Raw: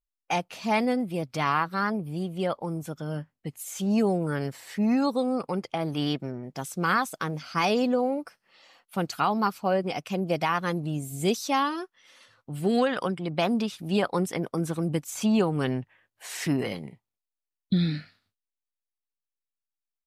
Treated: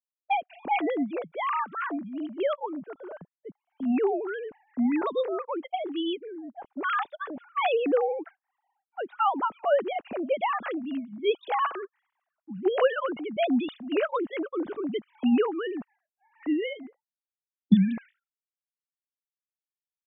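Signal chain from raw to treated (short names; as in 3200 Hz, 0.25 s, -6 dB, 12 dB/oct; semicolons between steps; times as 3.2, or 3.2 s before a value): sine-wave speech; low-pass opened by the level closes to 360 Hz, open at -24 dBFS; gain -1 dB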